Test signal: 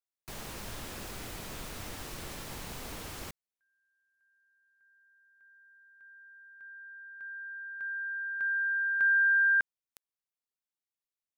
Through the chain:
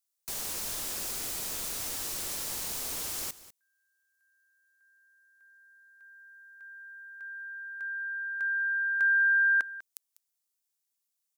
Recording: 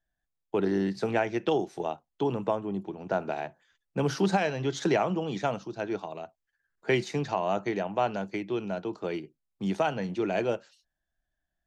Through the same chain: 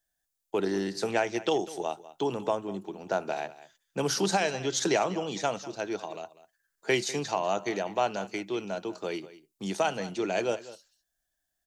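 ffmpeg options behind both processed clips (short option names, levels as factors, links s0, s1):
-af "bass=f=250:g=-7,treble=f=4000:g=13,aecho=1:1:197:0.141"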